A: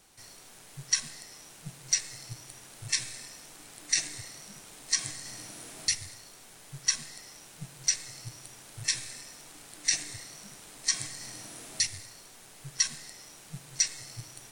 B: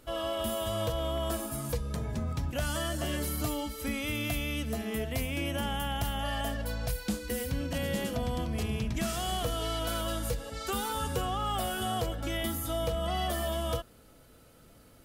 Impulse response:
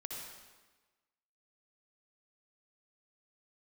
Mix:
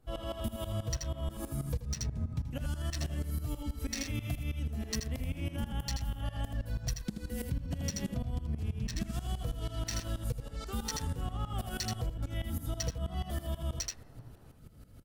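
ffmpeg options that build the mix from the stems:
-filter_complex "[0:a]highshelf=f=8300:g=-4.5,bandreject=f=2200:w=5.8,adynamicsmooth=sensitivity=5:basefreq=1000,volume=0.531,asplit=2[s0][s1];[s1]volume=0.708[s2];[1:a]bass=f=250:g=14,treble=f=4000:g=0,aeval=exprs='val(0)*pow(10,-19*if(lt(mod(-6.2*n/s,1),2*abs(-6.2)/1000),1-mod(-6.2*n/s,1)/(2*abs(-6.2)/1000),(mod(-6.2*n/s,1)-2*abs(-6.2)/1000)/(1-2*abs(-6.2)/1000))/20)':c=same,volume=0.841,asplit=2[s3][s4];[s4]volume=0.355[s5];[s2][s5]amix=inputs=2:normalize=0,aecho=0:1:80:1[s6];[s0][s3][s6]amix=inputs=3:normalize=0,acompressor=threshold=0.0282:ratio=6"

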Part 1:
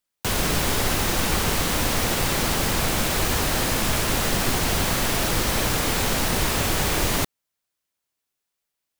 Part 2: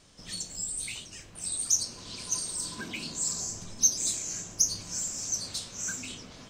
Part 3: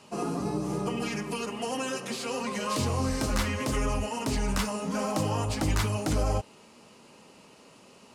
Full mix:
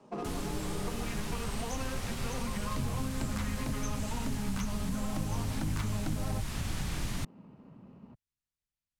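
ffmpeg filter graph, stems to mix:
-filter_complex "[0:a]lowpass=11000,volume=0.211[s0];[1:a]volume=0.15[s1];[2:a]highpass=160,adynamicsmooth=sensitivity=5:basefreq=790,volume=1.06[s2];[s0][s1][s2]amix=inputs=3:normalize=0,asubboost=boost=12:cutoff=130,acrossover=split=150|7100[s3][s4][s5];[s3]acompressor=threshold=0.0158:ratio=4[s6];[s4]acompressor=threshold=0.0158:ratio=4[s7];[s5]acompressor=threshold=0.00355:ratio=4[s8];[s6][s7][s8]amix=inputs=3:normalize=0"

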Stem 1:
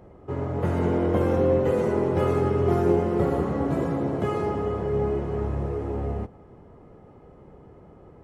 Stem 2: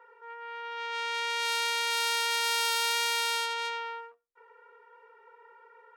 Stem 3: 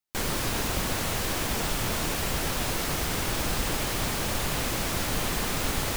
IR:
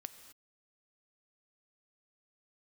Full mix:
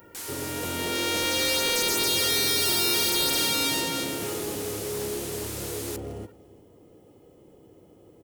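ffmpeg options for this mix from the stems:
-filter_complex "[0:a]equalizer=f=100:t=o:w=0.33:g=7,equalizer=f=315:t=o:w=0.33:g=8,equalizer=f=500:t=o:w=0.33:g=5,equalizer=f=3150:t=o:w=0.33:g=7,volume=11.9,asoftclip=hard,volume=0.0841,equalizer=f=1300:w=0.57:g=-14.5,volume=1.19,asplit=2[s0][s1];[s1]volume=0.0944[s2];[1:a]highshelf=f=2200:g=11,volume=0.631,asplit=2[s3][s4];[s4]volume=0.596[s5];[2:a]lowpass=11000,volume=0.2[s6];[s2][s5]amix=inputs=2:normalize=0,aecho=0:1:348:1[s7];[s0][s3][s6][s7]amix=inputs=4:normalize=0,aemphasis=mode=production:type=riaa,asoftclip=type=tanh:threshold=0.15"

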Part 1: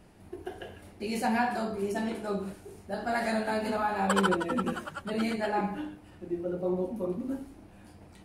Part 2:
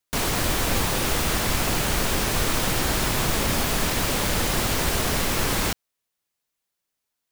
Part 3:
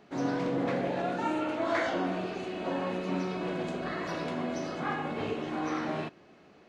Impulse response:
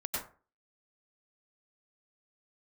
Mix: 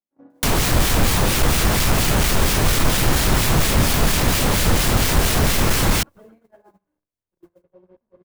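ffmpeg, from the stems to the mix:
-filter_complex "[0:a]acrusher=bits=7:dc=4:mix=0:aa=0.000001,aecho=1:1:1.9:0.36,adelay=1100,volume=0.251[s0];[1:a]aeval=exprs='0.422*sin(PI/2*2.82*val(0)/0.422)':c=same,acrossover=split=1600[s1][s2];[s1]aeval=exprs='val(0)*(1-0.5/2+0.5/2*cos(2*PI*4.3*n/s))':c=same[s3];[s2]aeval=exprs='val(0)*(1-0.5/2-0.5/2*cos(2*PI*4.3*n/s))':c=same[s4];[s3][s4]amix=inputs=2:normalize=0,adelay=300,volume=1.12[s5];[2:a]aecho=1:1:3.6:0.55,volume=0.188[s6];[s0][s6]amix=inputs=2:normalize=0,lowpass=1200,alimiter=level_in=4.22:limit=0.0631:level=0:latency=1:release=241,volume=0.237,volume=1[s7];[s5][s7]amix=inputs=2:normalize=0,agate=range=0.0398:threshold=0.00708:ratio=16:detection=peak,acrossover=split=190[s8][s9];[s9]acompressor=threshold=0.0794:ratio=2[s10];[s8][s10]amix=inputs=2:normalize=0"

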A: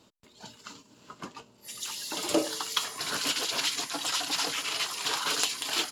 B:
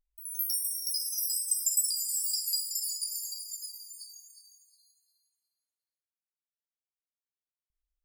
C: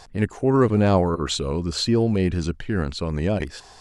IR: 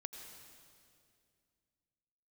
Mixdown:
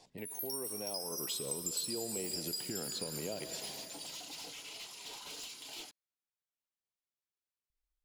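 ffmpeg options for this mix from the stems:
-filter_complex "[0:a]asoftclip=type=tanh:threshold=0.0355,volume=0.178,asplit=2[s0][s1];[s1]volume=0.708[s2];[1:a]highshelf=f=9400:g=-7,volume=0.841[s3];[2:a]highpass=f=120:w=0.5412,highpass=f=120:w=1.3066,acrossover=split=370[s4][s5];[s4]acompressor=threshold=0.0178:ratio=6[s6];[s6][s5]amix=inputs=2:normalize=0,volume=0.596,afade=t=in:st=1.02:d=0.37:silence=0.266073,asplit=2[s7][s8];[s8]volume=0.473[s9];[s0][s7]amix=inputs=2:normalize=0,asuperstop=centerf=1400:order=8:qfactor=2.1,acompressor=threshold=0.0126:ratio=6,volume=1[s10];[3:a]atrim=start_sample=2205[s11];[s2][s9]amix=inputs=2:normalize=0[s12];[s12][s11]afir=irnorm=-1:irlink=0[s13];[s3][s10][s13]amix=inputs=3:normalize=0,acompressor=threshold=0.0112:ratio=2"

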